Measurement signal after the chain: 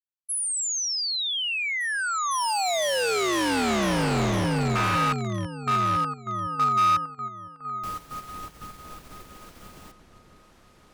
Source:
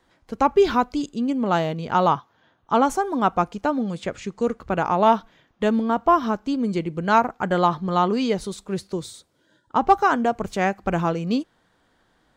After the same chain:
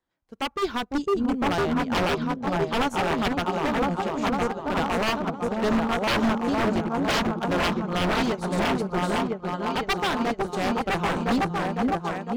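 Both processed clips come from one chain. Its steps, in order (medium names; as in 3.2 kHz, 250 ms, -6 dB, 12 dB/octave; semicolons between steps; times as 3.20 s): delay with an opening low-pass 505 ms, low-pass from 400 Hz, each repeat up 2 oct, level 0 dB; wavefolder -16 dBFS; upward expansion 2.5:1, over -33 dBFS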